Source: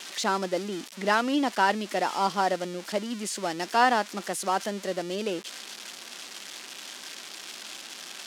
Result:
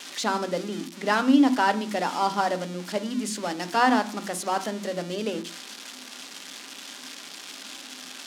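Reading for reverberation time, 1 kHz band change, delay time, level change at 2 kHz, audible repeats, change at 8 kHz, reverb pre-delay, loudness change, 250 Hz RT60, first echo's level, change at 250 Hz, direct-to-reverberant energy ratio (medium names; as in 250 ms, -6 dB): 0.50 s, +0.5 dB, no echo, 0.0 dB, no echo, 0.0 dB, 3 ms, +3.0 dB, 0.50 s, no echo, +7.0 dB, 10.0 dB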